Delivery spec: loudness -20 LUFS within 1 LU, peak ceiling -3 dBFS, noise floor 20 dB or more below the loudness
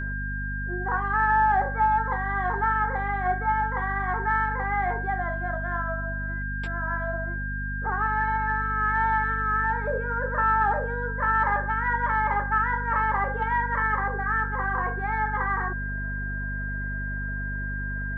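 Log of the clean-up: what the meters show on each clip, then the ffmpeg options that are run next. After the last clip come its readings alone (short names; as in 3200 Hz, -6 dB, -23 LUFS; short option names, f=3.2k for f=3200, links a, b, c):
hum 50 Hz; harmonics up to 250 Hz; hum level -29 dBFS; steady tone 1600 Hz; tone level -32 dBFS; loudness -26.0 LUFS; peak -11.5 dBFS; loudness target -20.0 LUFS
-> -af "bandreject=f=50:t=h:w=6,bandreject=f=100:t=h:w=6,bandreject=f=150:t=h:w=6,bandreject=f=200:t=h:w=6,bandreject=f=250:t=h:w=6"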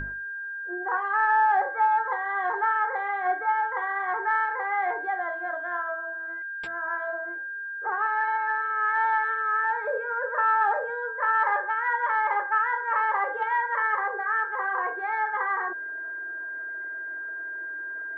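hum none; steady tone 1600 Hz; tone level -32 dBFS
-> -af "bandreject=f=1.6k:w=30"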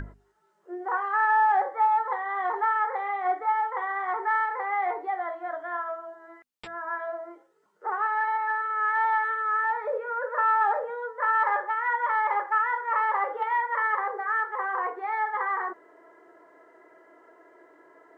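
steady tone none; loudness -26.5 LUFS; peak -13.5 dBFS; loudness target -20.0 LUFS
-> -af "volume=6.5dB"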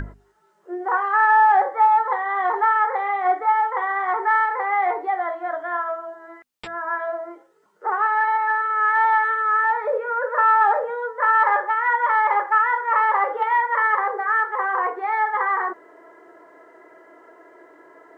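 loudness -20.0 LUFS; peak -7.0 dBFS; noise floor -59 dBFS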